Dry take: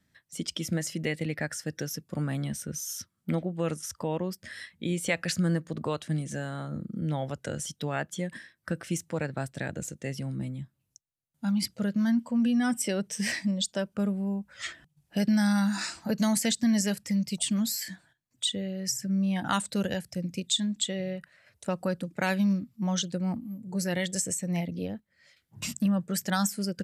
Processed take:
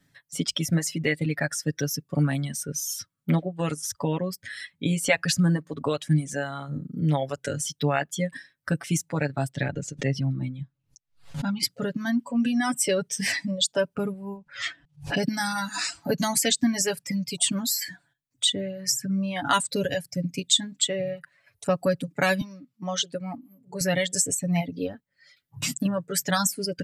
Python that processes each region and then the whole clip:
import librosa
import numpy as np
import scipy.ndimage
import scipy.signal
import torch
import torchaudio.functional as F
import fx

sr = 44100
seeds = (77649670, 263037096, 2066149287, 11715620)

y = fx.chain(x, sr, fx.lowpass(hz=4900.0, slope=12),
    fx.low_shelf(hz=60.0, db=10.5),
    fx.pre_swell(db_per_s=140.0), at=(9.55, 11.63))
y = fx.chain(y, sr, fx.lowpass(hz=5400.0, slope=12),
    fx.pre_swell(db_per_s=150.0), at=(14.37, 15.23))
y = fx.chain(y, sr, fx.highpass(hz=420.0, slope=6),
    fx.high_shelf(hz=7500.0, db=-9.0), at=(22.41, 23.81))
y = fx.dereverb_blind(y, sr, rt60_s=1.7)
y = y + 0.76 * np.pad(y, (int(7.1 * sr / 1000.0), 0))[:len(y)]
y = F.gain(torch.from_numpy(y), 4.5).numpy()